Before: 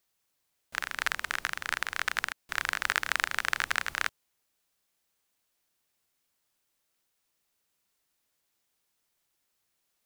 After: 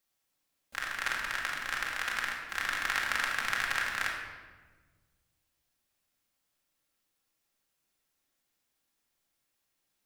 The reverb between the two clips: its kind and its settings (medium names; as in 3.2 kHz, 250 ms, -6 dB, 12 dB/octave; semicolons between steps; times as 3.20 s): simulated room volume 1200 m³, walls mixed, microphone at 2.2 m; trim -5.5 dB